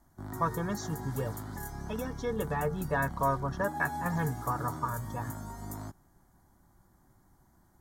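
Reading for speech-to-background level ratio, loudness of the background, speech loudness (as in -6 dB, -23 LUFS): 7.0 dB, -41.0 LUFS, -34.0 LUFS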